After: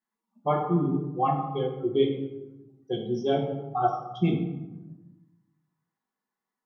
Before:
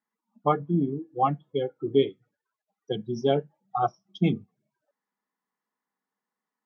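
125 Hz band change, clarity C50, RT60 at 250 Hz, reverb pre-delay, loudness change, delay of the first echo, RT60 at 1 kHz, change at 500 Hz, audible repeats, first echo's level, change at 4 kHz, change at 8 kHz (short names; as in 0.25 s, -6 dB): +1.0 dB, 5.0 dB, 1.5 s, 5 ms, 0.0 dB, none, 1.0 s, -0.5 dB, none, none, -1.5 dB, n/a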